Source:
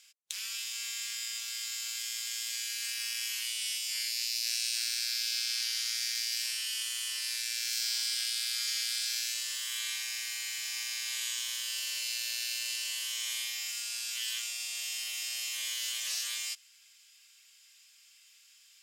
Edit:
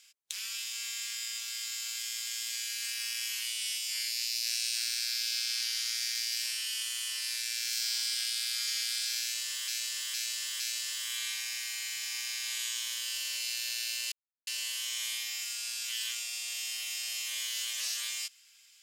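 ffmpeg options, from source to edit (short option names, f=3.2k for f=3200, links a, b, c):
-filter_complex "[0:a]asplit=5[a][b][c][d][e];[a]atrim=end=9.682[f];[b]atrim=start=9.218:end=9.682[g];[c]atrim=start=9.218:end=9.682[h];[d]atrim=start=9.218:end=12.74,asetpts=PTS-STARTPTS,afade=t=out:st=3.518:d=0.004:c=hsin,apad=pad_dur=0.35[i];[e]atrim=start=12.74,asetpts=PTS-STARTPTS,afade=t=in:d=0.004:c=hsin[j];[f][g]acrossfade=d=0.004:c1=hsin:c2=hsin[k];[k][h]acrossfade=d=0.004:c1=hsin:c2=hsin[l];[i][j]concat=n=2:v=0:a=1[m];[l][m]acrossfade=d=0.004:c1=hsin:c2=hsin"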